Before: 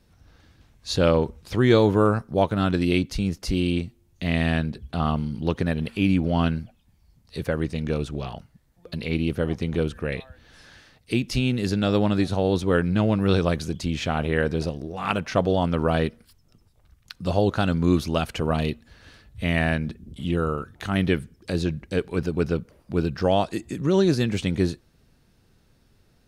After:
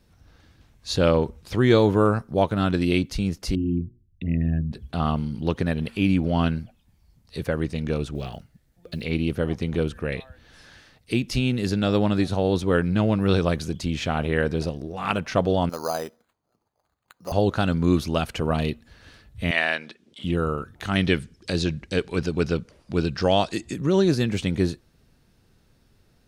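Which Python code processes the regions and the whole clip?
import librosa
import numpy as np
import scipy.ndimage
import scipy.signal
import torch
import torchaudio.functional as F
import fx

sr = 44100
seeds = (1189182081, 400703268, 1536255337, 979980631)

y = fx.chain(x, sr, fx.envelope_sharpen(power=3.0),
    fx.hum_notches(base_hz=60, count=10), at=(3.55, 4.72))
y = fx.chain(y, sr, fx.block_float(bits=7),
    fx.peak_eq(hz=1000.0, db=-8.0, octaves=0.45), at=(8.15, 9.05))
y = fx.chain(y, sr, fx.bandpass_q(hz=830.0, q=1.4),
    fx.resample_bad(factor=8, down='none', up='hold'), at=(15.69, 17.32))
y = fx.chain(y, sr, fx.bandpass_edges(low_hz=510.0, high_hz=4300.0),
    fx.high_shelf(hz=2500.0, db=12.0), at=(19.51, 20.24))
y = fx.chain(y, sr, fx.lowpass(hz=6300.0, slope=12),
    fx.high_shelf(hz=3000.0, db=11.5), at=(20.87, 23.74))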